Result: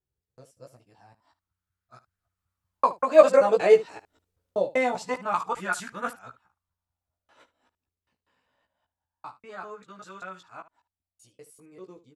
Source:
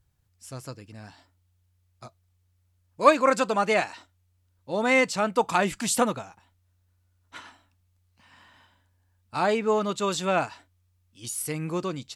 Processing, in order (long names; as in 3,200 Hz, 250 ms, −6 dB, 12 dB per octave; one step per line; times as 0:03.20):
reversed piece by piece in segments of 192 ms
source passing by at 0:03.83, 6 m/s, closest 5.5 metres
ambience of single reflections 16 ms −4 dB, 73 ms −15.5 dB
auto-filter bell 0.25 Hz 410–1,500 Hz +15 dB
level −6.5 dB